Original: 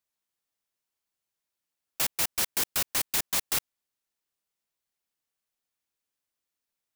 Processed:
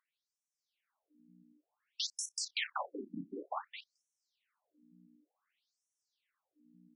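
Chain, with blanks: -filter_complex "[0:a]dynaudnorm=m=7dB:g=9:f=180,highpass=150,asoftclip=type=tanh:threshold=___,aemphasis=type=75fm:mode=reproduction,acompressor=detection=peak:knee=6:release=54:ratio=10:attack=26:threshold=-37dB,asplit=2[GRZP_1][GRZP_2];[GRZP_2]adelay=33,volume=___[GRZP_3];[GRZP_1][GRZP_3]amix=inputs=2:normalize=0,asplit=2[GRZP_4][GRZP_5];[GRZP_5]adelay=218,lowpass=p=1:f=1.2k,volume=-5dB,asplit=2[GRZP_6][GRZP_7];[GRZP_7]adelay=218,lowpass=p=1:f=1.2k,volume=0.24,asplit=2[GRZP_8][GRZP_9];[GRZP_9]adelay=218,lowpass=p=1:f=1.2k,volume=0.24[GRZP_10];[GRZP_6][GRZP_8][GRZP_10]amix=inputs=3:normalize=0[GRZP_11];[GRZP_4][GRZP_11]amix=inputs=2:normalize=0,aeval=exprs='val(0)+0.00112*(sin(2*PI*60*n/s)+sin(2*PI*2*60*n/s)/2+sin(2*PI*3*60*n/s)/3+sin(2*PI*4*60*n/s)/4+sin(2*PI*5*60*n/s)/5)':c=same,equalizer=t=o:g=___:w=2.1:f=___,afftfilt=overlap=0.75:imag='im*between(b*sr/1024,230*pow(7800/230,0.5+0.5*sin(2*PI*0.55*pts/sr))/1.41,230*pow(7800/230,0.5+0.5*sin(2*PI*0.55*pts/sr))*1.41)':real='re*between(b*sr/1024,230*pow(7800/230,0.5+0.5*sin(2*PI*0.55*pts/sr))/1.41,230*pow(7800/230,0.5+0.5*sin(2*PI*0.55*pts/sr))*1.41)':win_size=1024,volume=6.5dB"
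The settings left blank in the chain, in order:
-22.5dB, -13.5dB, 2.5, 3.1k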